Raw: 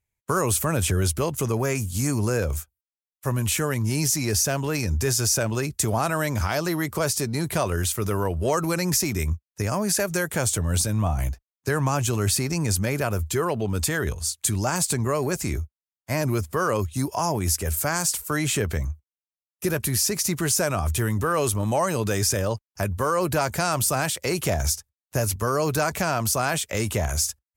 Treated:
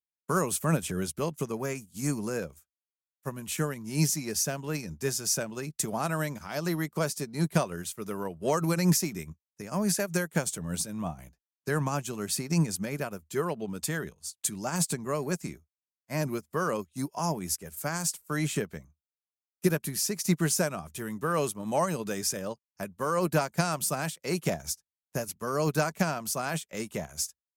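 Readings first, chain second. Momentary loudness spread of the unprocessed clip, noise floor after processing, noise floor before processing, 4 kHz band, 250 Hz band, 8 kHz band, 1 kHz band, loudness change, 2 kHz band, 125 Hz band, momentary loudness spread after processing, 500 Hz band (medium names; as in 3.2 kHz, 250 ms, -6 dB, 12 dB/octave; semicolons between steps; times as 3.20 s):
6 LU, under -85 dBFS, under -85 dBFS, -7.5 dB, -3.5 dB, -7.0 dB, -6.0 dB, -6.0 dB, -6.5 dB, -7.5 dB, 9 LU, -5.5 dB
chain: resonant low shelf 130 Hz -7 dB, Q 3; upward expansion 2.5:1, over -34 dBFS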